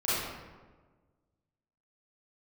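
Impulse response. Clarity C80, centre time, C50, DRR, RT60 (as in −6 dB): 0.0 dB, 106 ms, −4.5 dB, −12.0 dB, 1.4 s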